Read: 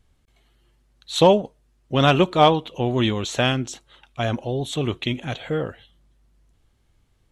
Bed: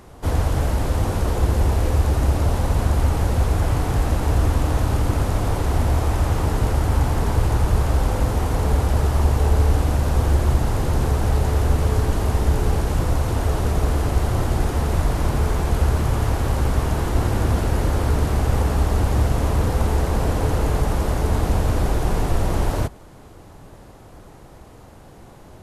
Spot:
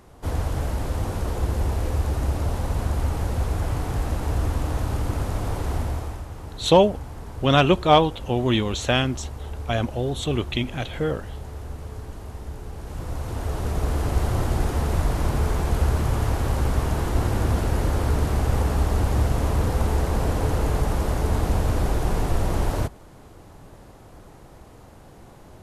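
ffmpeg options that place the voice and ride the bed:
ffmpeg -i stem1.wav -i stem2.wav -filter_complex "[0:a]adelay=5500,volume=-0.5dB[link_01];[1:a]volume=8.5dB,afade=type=out:start_time=5.72:duration=0.53:silence=0.281838,afade=type=in:start_time=12.74:duration=1.47:silence=0.199526[link_02];[link_01][link_02]amix=inputs=2:normalize=0" out.wav

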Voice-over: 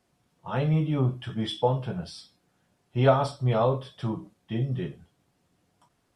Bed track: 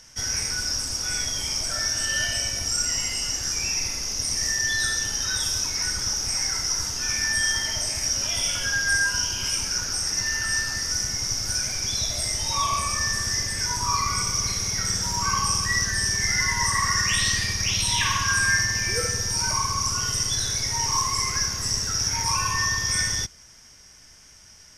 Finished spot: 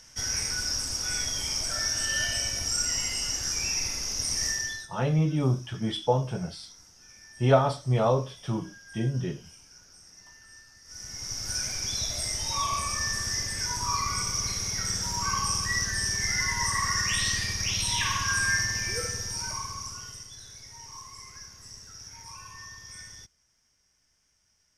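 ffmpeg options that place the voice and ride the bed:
ffmpeg -i stem1.wav -i stem2.wav -filter_complex "[0:a]adelay=4450,volume=0dB[link_01];[1:a]volume=19dB,afade=type=out:start_time=4.46:duration=0.42:silence=0.0668344,afade=type=in:start_time=10.84:duration=0.77:silence=0.0794328,afade=type=out:start_time=18.67:duration=1.61:silence=0.158489[link_02];[link_01][link_02]amix=inputs=2:normalize=0" out.wav

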